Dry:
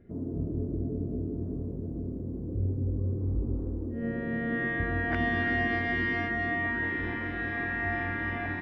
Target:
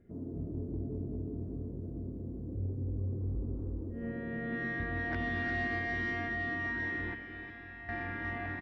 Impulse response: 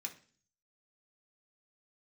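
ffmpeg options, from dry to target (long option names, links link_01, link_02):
-filter_complex "[0:a]asettb=1/sr,asplit=3[link_01][link_02][link_03];[link_01]atrim=end=7.144[link_04];[link_02]atrim=start=7.14:end=7.89,asetpts=PTS-STARTPTS,afade=type=in:duration=0.004:curve=qsin,afade=type=out:start_time=0.746:duration=0.004:curve=qsin,acrossover=split=85|2900[link_05][link_06][link_07];[link_05]acompressor=threshold=-53dB:ratio=4[link_08];[link_06]acompressor=threshold=-44dB:ratio=4[link_09];[link_07]acompressor=threshold=-52dB:ratio=4[link_10];[link_08][link_09][link_10]amix=inputs=3:normalize=0[link_11];[link_03]atrim=start=7.886[link_12];[link_04][link_11]acrossfade=duration=0.004:curve1=hsin:curve2=qsin[link_13];[link_13][link_12]acrossfade=duration=0.004:curve1=qsin:curve2=hsin,aecho=1:1:357:0.316,asoftclip=type=tanh:threshold=-19dB,volume=-6dB"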